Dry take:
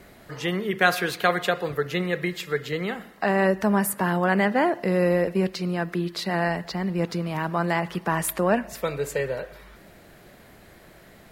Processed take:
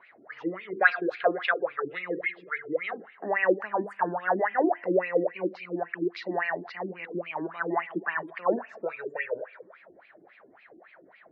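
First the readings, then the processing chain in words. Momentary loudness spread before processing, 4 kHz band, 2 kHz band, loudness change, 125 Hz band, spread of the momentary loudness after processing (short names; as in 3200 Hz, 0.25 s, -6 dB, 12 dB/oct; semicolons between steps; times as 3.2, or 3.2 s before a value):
8 LU, -12.5 dB, -1.5 dB, -4.5 dB, -17.5 dB, 11 LU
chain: bell 9200 Hz +6 dB 2.7 oct; notches 50/100/150/200/250/300/350/400/450/500 Hz; spring tank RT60 1.3 s, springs 55 ms, chirp 25 ms, DRR 18 dB; wah 3.6 Hz 300–2500 Hz, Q 8; spectral gate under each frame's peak -30 dB strong; air absorption 130 m; gain +8.5 dB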